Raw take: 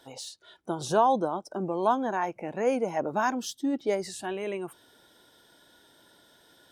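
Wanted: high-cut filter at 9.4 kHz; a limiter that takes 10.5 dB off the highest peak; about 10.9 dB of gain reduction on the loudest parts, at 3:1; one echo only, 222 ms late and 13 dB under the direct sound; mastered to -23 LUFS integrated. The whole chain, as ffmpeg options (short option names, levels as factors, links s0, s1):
-af "lowpass=9400,acompressor=threshold=0.0224:ratio=3,alimiter=level_in=2.24:limit=0.0631:level=0:latency=1,volume=0.447,aecho=1:1:222:0.224,volume=7.5"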